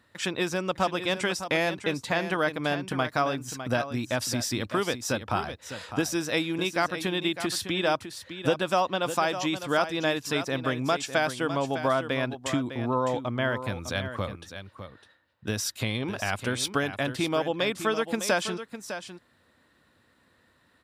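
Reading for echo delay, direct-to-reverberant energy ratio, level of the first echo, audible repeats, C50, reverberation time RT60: 605 ms, no reverb audible, −10.5 dB, 1, no reverb audible, no reverb audible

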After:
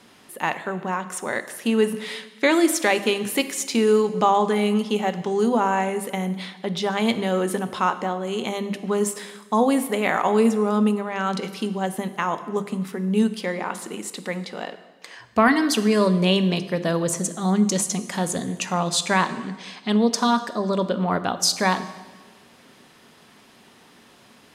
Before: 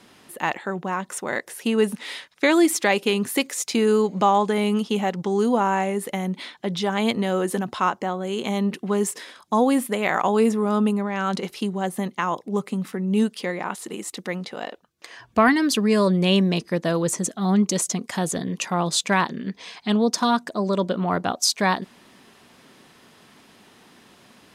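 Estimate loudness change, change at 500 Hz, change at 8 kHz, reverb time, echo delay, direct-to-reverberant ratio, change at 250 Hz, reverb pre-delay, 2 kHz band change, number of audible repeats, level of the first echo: 0.0 dB, +0.5 dB, +0.5 dB, 1.3 s, no echo audible, 10.5 dB, 0.0 dB, 3 ms, +0.5 dB, no echo audible, no echo audible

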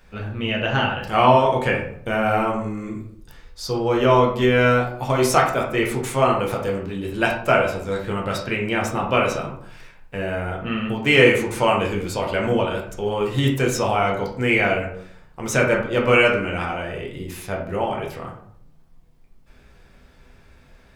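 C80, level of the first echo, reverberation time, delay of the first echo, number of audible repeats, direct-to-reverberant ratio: 9.5 dB, no echo audible, 0.60 s, no echo audible, no echo audible, −2.0 dB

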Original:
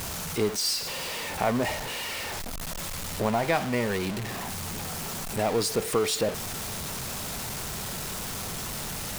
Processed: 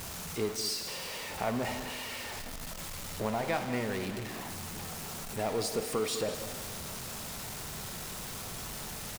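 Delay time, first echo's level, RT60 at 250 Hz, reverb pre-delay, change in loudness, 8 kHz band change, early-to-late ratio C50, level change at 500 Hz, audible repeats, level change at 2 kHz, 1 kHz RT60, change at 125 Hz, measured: 199 ms, −12.5 dB, 2.1 s, 9 ms, −6.5 dB, −6.5 dB, 8.0 dB, −6.0 dB, 1, −6.5 dB, 2.1 s, −6.5 dB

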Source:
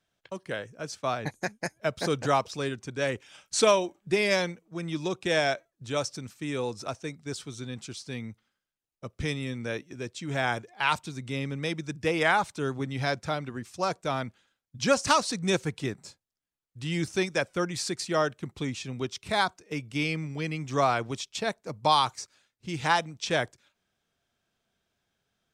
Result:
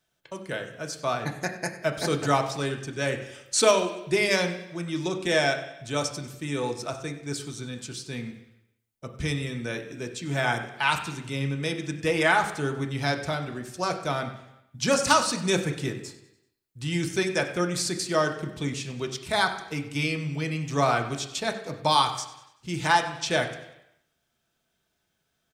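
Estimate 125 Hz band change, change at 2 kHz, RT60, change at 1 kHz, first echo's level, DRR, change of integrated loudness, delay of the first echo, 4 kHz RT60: +3.5 dB, +3.0 dB, 0.85 s, +1.5 dB, −16.0 dB, 3.0 dB, +2.0 dB, 96 ms, 0.85 s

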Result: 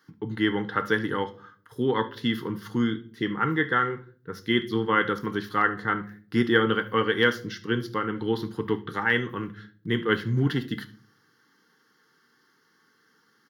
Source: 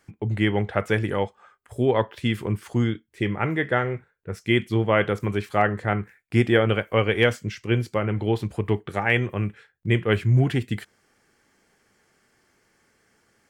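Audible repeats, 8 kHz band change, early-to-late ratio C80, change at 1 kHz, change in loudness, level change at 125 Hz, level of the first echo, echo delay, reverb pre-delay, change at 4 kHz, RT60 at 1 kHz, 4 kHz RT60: 1, can't be measured, 22.0 dB, +0.5 dB, −2.5 dB, −8.5 dB, −19.5 dB, 72 ms, 4 ms, +1.0 dB, 0.40 s, 0.30 s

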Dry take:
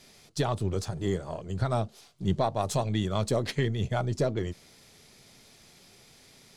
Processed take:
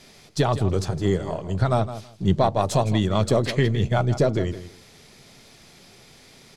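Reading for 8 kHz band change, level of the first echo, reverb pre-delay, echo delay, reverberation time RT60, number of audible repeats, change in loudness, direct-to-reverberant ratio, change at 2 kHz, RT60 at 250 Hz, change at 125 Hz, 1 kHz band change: +3.5 dB, −13.0 dB, no reverb audible, 162 ms, no reverb audible, 2, +7.0 dB, no reverb audible, +6.5 dB, no reverb audible, +7.0 dB, +7.0 dB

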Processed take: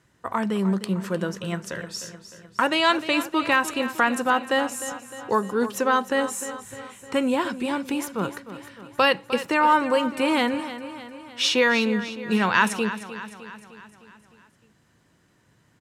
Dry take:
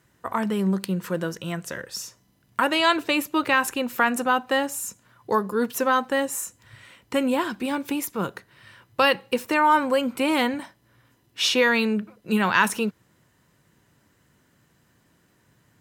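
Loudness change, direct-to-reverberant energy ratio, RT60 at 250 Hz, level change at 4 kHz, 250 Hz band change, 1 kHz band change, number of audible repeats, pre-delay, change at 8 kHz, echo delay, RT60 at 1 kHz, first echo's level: 0.0 dB, no reverb audible, no reverb audible, 0.0 dB, +0.5 dB, +0.5 dB, 5, no reverb audible, −1.0 dB, 305 ms, no reverb audible, −13.0 dB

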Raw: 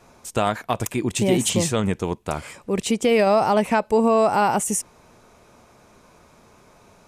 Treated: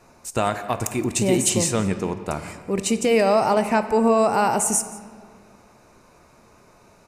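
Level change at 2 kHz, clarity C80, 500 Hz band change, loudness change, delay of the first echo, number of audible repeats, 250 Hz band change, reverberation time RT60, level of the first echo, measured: −0.5 dB, 11.5 dB, −0.5 dB, 0.0 dB, 173 ms, 1, 0.0 dB, 2.0 s, −19.0 dB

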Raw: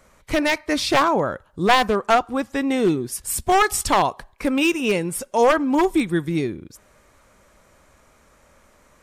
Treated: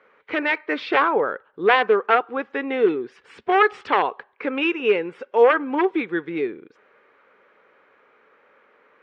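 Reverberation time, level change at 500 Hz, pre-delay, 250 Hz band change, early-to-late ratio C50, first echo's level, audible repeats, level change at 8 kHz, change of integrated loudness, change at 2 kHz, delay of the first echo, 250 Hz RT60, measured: no reverb audible, +1.5 dB, no reverb audible, −5.0 dB, no reverb audible, no echo audible, no echo audible, below −30 dB, −1.0 dB, +1.5 dB, no echo audible, no reverb audible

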